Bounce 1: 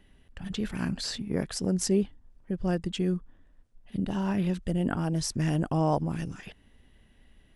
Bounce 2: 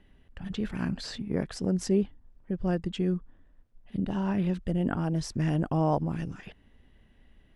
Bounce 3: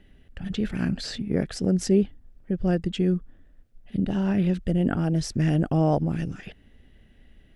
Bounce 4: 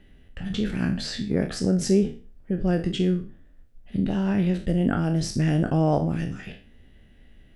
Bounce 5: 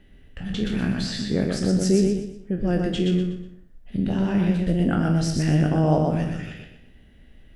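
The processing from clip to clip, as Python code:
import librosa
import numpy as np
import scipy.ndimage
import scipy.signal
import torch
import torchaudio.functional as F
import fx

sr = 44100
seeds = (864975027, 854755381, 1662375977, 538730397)

y1 = fx.lowpass(x, sr, hz=2800.0, slope=6)
y2 = fx.peak_eq(y1, sr, hz=1000.0, db=-10.0, octaves=0.49)
y2 = F.gain(torch.from_numpy(y2), 5.0).numpy()
y3 = fx.spec_trails(y2, sr, decay_s=0.38)
y4 = fx.echo_feedback(y3, sr, ms=122, feedback_pct=34, wet_db=-3.5)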